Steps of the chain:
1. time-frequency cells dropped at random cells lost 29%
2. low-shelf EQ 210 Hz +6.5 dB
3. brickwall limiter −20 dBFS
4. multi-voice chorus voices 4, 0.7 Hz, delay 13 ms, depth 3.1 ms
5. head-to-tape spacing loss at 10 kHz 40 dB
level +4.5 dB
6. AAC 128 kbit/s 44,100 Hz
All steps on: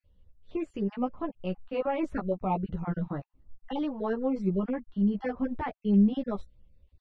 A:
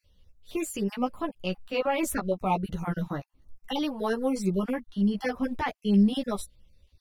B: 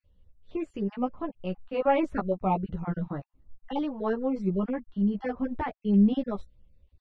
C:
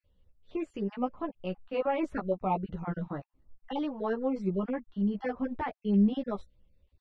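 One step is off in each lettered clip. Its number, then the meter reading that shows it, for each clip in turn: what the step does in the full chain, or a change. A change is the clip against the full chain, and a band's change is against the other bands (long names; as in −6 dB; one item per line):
5, 2 kHz band +6.0 dB
3, change in momentary loudness spread +1 LU
2, 125 Hz band −3.0 dB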